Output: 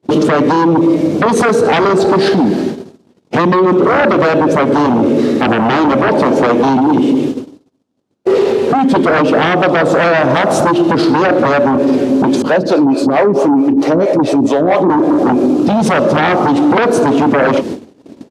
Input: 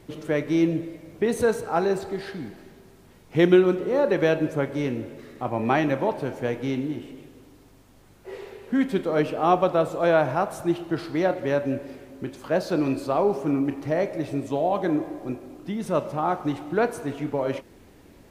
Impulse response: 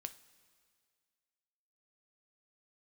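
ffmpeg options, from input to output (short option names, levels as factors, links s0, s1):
-filter_complex "[0:a]aemphasis=mode=production:type=cd,agate=range=0.00501:threshold=0.00447:ratio=16:detection=peak,equalizer=f=250:t=o:w=1:g=9,equalizer=f=500:t=o:w=1:g=4,equalizer=f=2000:t=o:w=1:g=-7,acompressor=threshold=0.0891:ratio=12,asettb=1/sr,asplit=3[s0][s1][s2];[s0]atrim=end=12.424[s3];[s1]atrim=start=12.42:end=14.9,asetpts=PTS-STARTPTS,afade=t=in:d=0.004:c=qsin,afade=t=out:st=2.476:d=0.004:c=qsin,acrossover=split=410[s4][s5];[s4]aeval=exprs='val(0)*(1-1/2+1/2*cos(2*PI*4.5*n/s))':c=same[s6];[s5]aeval=exprs='val(0)*(1-1/2-1/2*cos(2*PI*4.5*n/s))':c=same[s7];[s6][s7]amix=inputs=2:normalize=0[s8];[s2]atrim=start=14.896[s9];[s3][s8]acrossfade=d=0.004:c1=hsin:c2=qsin[s10];[s10][s9]acrossfade=d=0.004:c1=qsin:c2=hsin,aeval=exprs='0.224*sin(PI/2*3.98*val(0)/0.224)':c=same,highpass=130,lowpass=4900,asplit=2[s11][s12];[s12]adelay=116.6,volume=0.0355,highshelf=f=4000:g=-2.62[s13];[s11][s13]amix=inputs=2:normalize=0,alimiter=level_in=4.73:limit=0.891:release=50:level=0:latency=1,volume=0.708"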